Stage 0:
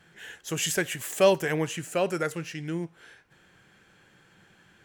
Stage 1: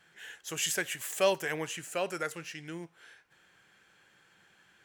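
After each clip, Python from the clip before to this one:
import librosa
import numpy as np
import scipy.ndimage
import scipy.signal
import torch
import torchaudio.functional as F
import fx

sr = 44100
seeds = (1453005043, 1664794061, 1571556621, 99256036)

y = fx.low_shelf(x, sr, hz=440.0, db=-11.0)
y = y * librosa.db_to_amplitude(-2.5)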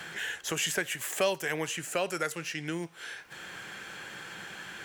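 y = fx.band_squash(x, sr, depth_pct=70)
y = y * librosa.db_to_amplitude(3.5)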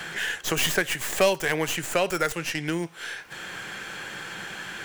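y = fx.tracing_dist(x, sr, depth_ms=0.092)
y = y * librosa.db_to_amplitude(6.5)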